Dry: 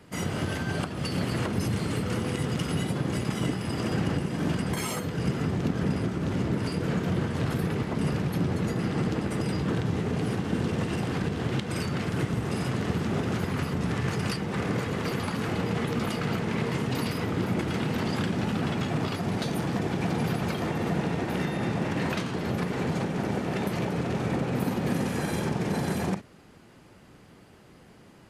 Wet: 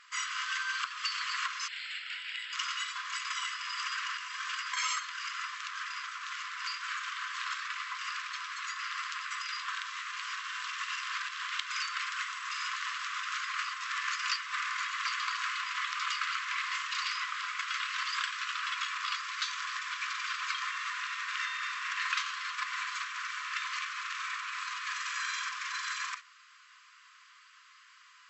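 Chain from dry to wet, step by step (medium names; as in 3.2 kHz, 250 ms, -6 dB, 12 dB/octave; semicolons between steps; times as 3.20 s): 1.68–2.53 s: static phaser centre 2.7 kHz, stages 4; FFT band-pass 1–7.9 kHz; trim +3.5 dB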